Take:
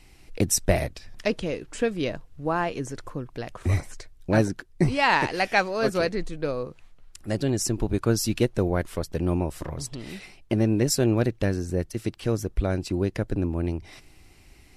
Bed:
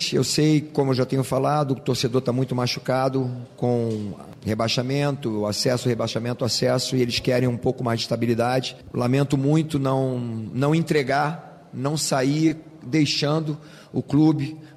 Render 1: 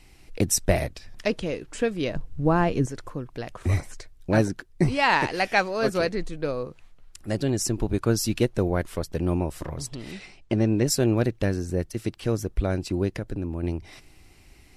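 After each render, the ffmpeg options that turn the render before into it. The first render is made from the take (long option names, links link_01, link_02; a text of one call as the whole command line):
ffmpeg -i in.wav -filter_complex "[0:a]asettb=1/sr,asplit=3[link_01][link_02][link_03];[link_01]atrim=end=2.154[link_04];[link_02]atrim=start=2.15:end=2.86,asetpts=PTS-STARTPTS,afade=type=in:duration=0.004:curve=qsin,afade=type=out:start_time=0.706:duration=0.004:curve=qsin,lowshelf=frequency=370:gain=12[link_05];[link_03]atrim=start=2.856[link_06];[link_04][link_05]acrossfade=duration=0.004:curve1=hsin:curve2=qsin[link_07];[link_07][link_06]acrossfade=duration=0.004:curve1=qsin:curve2=hsin,asettb=1/sr,asplit=3[link_08][link_09][link_10];[link_08]atrim=end=10.114[link_11];[link_09]atrim=start=10.11:end=10.86,asetpts=PTS-STARTPTS,afade=type=in:duration=0.004:curve=qsin,afade=type=out:start_time=0.746:duration=0.004:curve=qsin,lowpass=frequency=8400:width=0.5412,lowpass=frequency=8400:width=1.3066[link_12];[link_10]atrim=start=10.856[link_13];[link_11][link_12]acrossfade=duration=0.004:curve1=hsin:curve2=qsin[link_14];[link_14][link_13]acrossfade=duration=0.004:curve1=qsin:curve2=hsin,asettb=1/sr,asplit=3[link_15][link_16][link_17];[link_15]atrim=end=13.184[link_18];[link_16]atrim=start=13.18:end=13.63,asetpts=PTS-STARTPTS,afade=type=in:duration=0.004:curve=qsin,afade=type=out:start_time=0.446:duration=0.004:curve=qsin,acompressor=threshold=-28dB:ratio=2:attack=3.2:release=140:knee=1:detection=peak[link_19];[link_17]atrim=start=13.626[link_20];[link_18][link_19]acrossfade=duration=0.004:curve1=hsin:curve2=qsin[link_21];[link_21][link_20]acrossfade=duration=0.004:curve1=qsin:curve2=hsin" out.wav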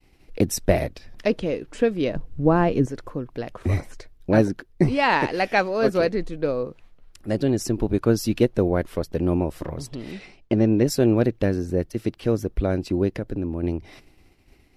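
ffmpeg -i in.wav -af "agate=range=-33dB:threshold=-46dB:ratio=3:detection=peak,equalizer=frequency=250:width_type=o:width=1:gain=4,equalizer=frequency=500:width_type=o:width=1:gain=4,equalizer=frequency=8000:width_type=o:width=1:gain=-7" out.wav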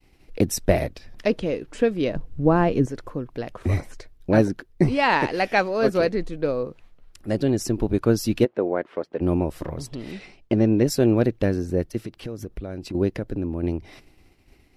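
ffmpeg -i in.wav -filter_complex "[0:a]asplit=3[link_01][link_02][link_03];[link_01]afade=type=out:start_time=8.44:duration=0.02[link_04];[link_02]highpass=330,lowpass=2300,afade=type=in:start_time=8.44:duration=0.02,afade=type=out:start_time=9.2:duration=0.02[link_05];[link_03]afade=type=in:start_time=9.2:duration=0.02[link_06];[link_04][link_05][link_06]amix=inputs=3:normalize=0,asettb=1/sr,asplit=3[link_07][link_08][link_09];[link_07]atrim=end=11.984[link_10];[link_08]atrim=start=11.98:end=12.95,asetpts=PTS-STARTPTS,afade=type=in:duration=0.004:curve=qsin,afade=type=out:start_time=0.966:duration=0.004:curve=qsin,acompressor=threshold=-29dB:ratio=5:attack=3.2:release=140:knee=1:detection=peak[link_11];[link_09]atrim=start=12.946[link_12];[link_10][link_11]acrossfade=duration=0.004:curve1=hsin:curve2=qsin[link_13];[link_13][link_12]acrossfade=duration=0.004:curve1=qsin:curve2=hsin" out.wav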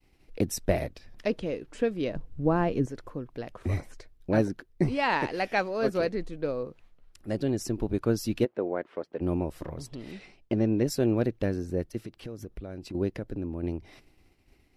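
ffmpeg -i in.wav -af "volume=-6.5dB" out.wav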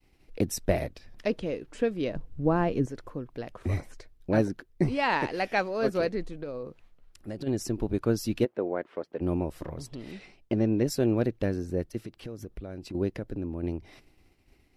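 ffmpeg -i in.wav -filter_complex "[0:a]asplit=3[link_01][link_02][link_03];[link_01]afade=type=out:start_time=6.3:duration=0.02[link_04];[link_02]acompressor=threshold=-32dB:ratio=6:attack=3.2:release=140:knee=1:detection=peak,afade=type=in:start_time=6.3:duration=0.02,afade=type=out:start_time=7.46:duration=0.02[link_05];[link_03]afade=type=in:start_time=7.46:duration=0.02[link_06];[link_04][link_05][link_06]amix=inputs=3:normalize=0" out.wav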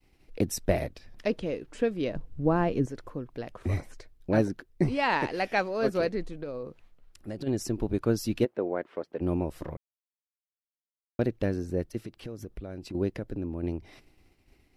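ffmpeg -i in.wav -filter_complex "[0:a]asplit=3[link_01][link_02][link_03];[link_01]atrim=end=9.77,asetpts=PTS-STARTPTS,afade=type=out:start_time=9.766:duration=0.004:curve=hsin[link_04];[link_02]atrim=start=9.77:end=11.19,asetpts=PTS-STARTPTS,volume=0[link_05];[link_03]atrim=start=11.19,asetpts=PTS-STARTPTS,afade=type=in:duration=0.004:curve=hsin[link_06];[link_04][link_05][link_06]concat=n=3:v=0:a=1" out.wav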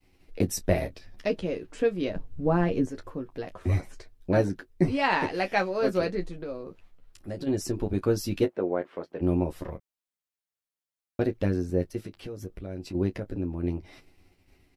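ffmpeg -i in.wav -af "aecho=1:1:11|30:0.596|0.178" out.wav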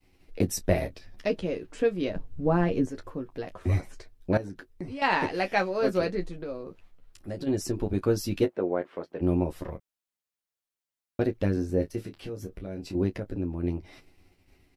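ffmpeg -i in.wav -filter_complex "[0:a]asettb=1/sr,asplit=3[link_01][link_02][link_03];[link_01]atrim=end=4.374[link_04];[link_02]atrim=start=4.37:end=5.02,asetpts=PTS-STARTPTS,afade=type=in:duration=0.004:curve=qsin,afade=type=out:start_time=0.646:duration=0.004:curve=qsin,acompressor=threshold=-37dB:ratio=3:attack=3.2:release=140:knee=1:detection=peak[link_05];[link_03]atrim=start=5.016[link_06];[link_04][link_05]acrossfade=duration=0.004:curve1=hsin:curve2=qsin[link_07];[link_07][link_06]acrossfade=duration=0.004:curve1=qsin:curve2=hsin,asettb=1/sr,asplit=3[link_08][link_09][link_10];[link_08]atrim=end=11.544[link_11];[link_09]atrim=start=11.54:end=13.04,asetpts=PTS-STARTPTS,afade=type=in:duration=0.004:curve=qsin,afade=type=out:start_time=1.496:duration=0.004:curve=qsin,asplit=2[link_12][link_13];[link_13]adelay=26,volume=-8dB[link_14];[link_12][link_14]amix=inputs=2:normalize=0,atrim=end_sample=66150[link_15];[link_10]atrim=start=13.036[link_16];[link_11][link_15]acrossfade=duration=0.004:curve1=hsin:curve2=qsin[link_17];[link_17][link_16]acrossfade=duration=0.004:curve1=qsin:curve2=hsin" out.wav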